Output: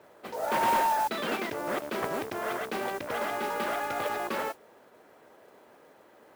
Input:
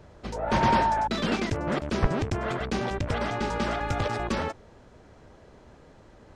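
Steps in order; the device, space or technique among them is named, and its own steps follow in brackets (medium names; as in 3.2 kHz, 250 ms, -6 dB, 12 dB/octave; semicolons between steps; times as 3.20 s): carbon microphone (band-pass 380–3200 Hz; saturation -18.5 dBFS, distortion -19 dB; modulation noise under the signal 16 dB)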